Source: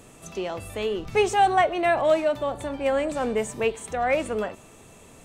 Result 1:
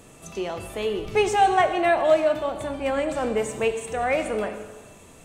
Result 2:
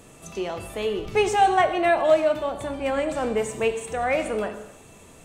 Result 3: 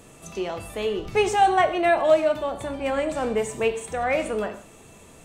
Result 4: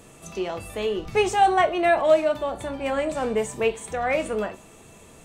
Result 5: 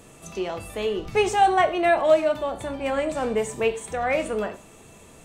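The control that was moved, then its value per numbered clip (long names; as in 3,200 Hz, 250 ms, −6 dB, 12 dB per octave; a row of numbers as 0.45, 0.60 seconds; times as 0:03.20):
reverb whose tail is shaped and stops, gate: 520, 340, 200, 90, 130 milliseconds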